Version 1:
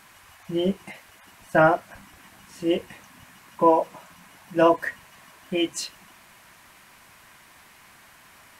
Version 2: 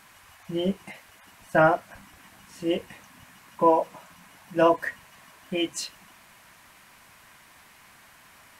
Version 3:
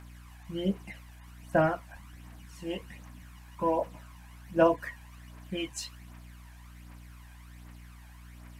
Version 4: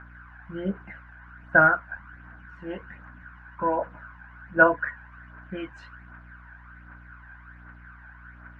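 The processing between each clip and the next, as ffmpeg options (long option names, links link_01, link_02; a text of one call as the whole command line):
ffmpeg -i in.wav -af "equalizer=frequency=360:width=6.6:gain=-3,volume=-1.5dB" out.wav
ffmpeg -i in.wav -af "aeval=exprs='val(0)+0.00501*(sin(2*PI*60*n/s)+sin(2*PI*2*60*n/s)/2+sin(2*PI*3*60*n/s)/3+sin(2*PI*4*60*n/s)/4+sin(2*PI*5*60*n/s)/5)':channel_layout=same,aphaser=in_gain=1:out_gain=1:delay=1.3:decay=0.51:speed=1.3:type=triangular,volume=-7dB" out.wav
ffmpeg -i in.wav -af "lowpass=frequency=1500:width_type=q:width=11" out.wav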